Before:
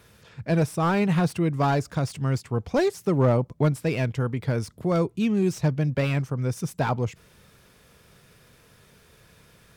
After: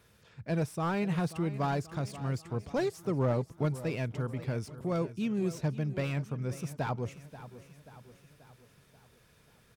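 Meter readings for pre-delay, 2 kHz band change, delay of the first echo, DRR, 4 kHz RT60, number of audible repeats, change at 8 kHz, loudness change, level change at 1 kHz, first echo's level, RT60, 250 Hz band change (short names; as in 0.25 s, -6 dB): none, -8.5 dB, 0.534 s, none, none, 4, -8.5 dB, -8.5 dB, -8.5 dB, -15.0 dB, none, -8.5 dB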